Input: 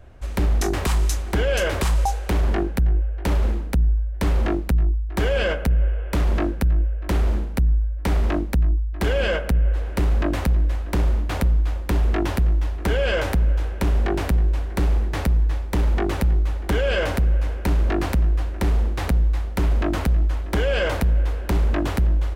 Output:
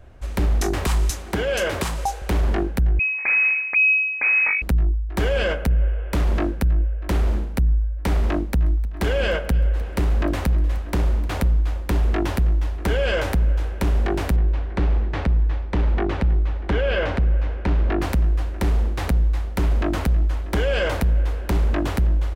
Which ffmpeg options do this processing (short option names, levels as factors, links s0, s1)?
-filter_complex "[0:a]asettb=1/sr,asplit=3[s0][s1][s2];[s0]atrim=end=1.104[s3];[s1]atrim=start=1.1:end=2.22,asetpts=PTS-STARTPTS,afade=t=in:d=0.004:c=qsin,afade=t=out:st=1.116:d=0.004:c=qsin,highpass=88[s4];[s2]atrim=start=2.216[s5];[s3][s4]acrossfade=d=0.004:c1=hsin:c2=qsin[s6];[s6][s5]acrossfade=d=0.004:c1=qsin:c2=hsin,asettb=1/sr,asplit=3[s7][s8][s9];[s7]atrim=end=2.994[s10];[s8]atrim=start=2.99:end=4.62,asetpts=PTS-STARTPTS,afade=t=in:d=0.004:c=qsin,afade=t=out:st=1.626:d=0.004:c=qsin,lowpass=f=2200:t=q:w=0.5098,lowpass=f=2200:t=q:w=0.6013,lowpass=f=2200:t=q:w=0.9,lowpass=f=2200:t=q:w=2.563,afreqshift=-2600[s11];[s9]atrim=start=4.616[s12];[s10][s11]acrossfade=d=0.004:c1=hsin:c2=qsin[s13];[s13][s12]acrossfade=d=0.004:c1=qsin:c2=hsin,asplit=3[s14][s15][s16];[s14]afade=t=out:st=8.52:d=0.02[s17];[s15]aecho=1:1:306|612|918:0.1|0.042|0.0176,afade=t=in:st=8.52:d=0.02,afade=t=out:st=11.38:d=0.02[s18];[s16]afade=t=in:st=11.38:d=0.02[s19];[s17][s18][s19]amix=inputs=3:normalize=0,asettb=1/sr,asplit=3[s20][s21][s22];[s20]atrim=end=14.364[s23];[s21]atrim=start=14.36:end=18.02,asetpts=PTS-STARTPTS,afade=t=in:d=0.004:c=qsin,afade=t=out:st=3.656:d=0.004:c=qsin,lowpass=3500[s24];[s22]atrim=start=18.016[s25];[s23][s24]acrossfade=d=0.004:c1=hsin:c2=qsin[s26];[s26][s25]acrossfade=d=0.004:c1=qsin:c2=hsin"